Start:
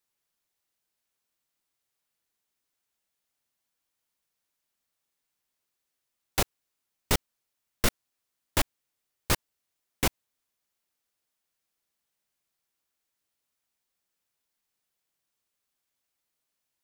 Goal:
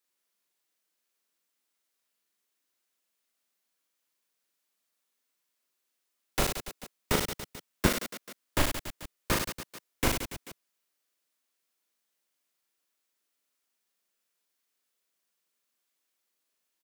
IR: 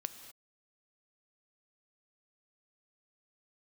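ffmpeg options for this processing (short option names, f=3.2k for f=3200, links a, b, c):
-filter_complex "[0:a]equalizer=f=810:t=o:w=0.4:g=-4,aecho=1:1:40|96|174.4|284.2|437.8:0.631|0.398|0.251|0.158|0.1,acrossover=split=170|2200[a][b][c];[a]acrusher=bits=4:dc=4:mix=0:aa=0.000001[d];[c]alimiter=limit=-22.5dB:level=0:latency=1:release=21[e];[d][b][e]amix=inputs=3:normalize=0"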